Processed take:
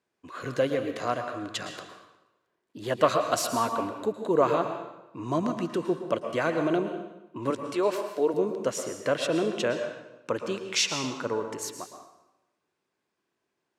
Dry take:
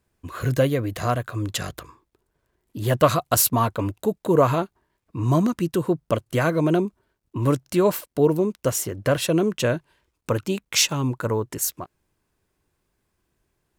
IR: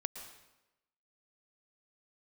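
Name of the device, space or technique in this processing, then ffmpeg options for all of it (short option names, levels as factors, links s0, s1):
supermarket ceiling speaker: -filter_complex "[0:a]asettb=1/sr,asplit=3[s0][s1][s2];[s0]atrim=end=7.504[s3];[s1]atrim=start=7.5:end=8.34,asetpts=PTS-STARTPTS,afade=t=in:d=0.004:c=qsin,afade=t=out:st=0.836:d=0.004:c=qsin,highpass=320[s4];[s2]atrim=start=8.336[s5];[s3][s4]acrossfade=d=0.004:c1=hsin:c2=qsin[s6];[s6][s5]acrossfade=d=0.004:c1=qsin:c2=hsin,highpass=260,lowpass=6200[s7];[1:a]atrim=start_sample=2205[s8];[s7][s8]afir=irnorm=-1:irlink=0,volume=0.708"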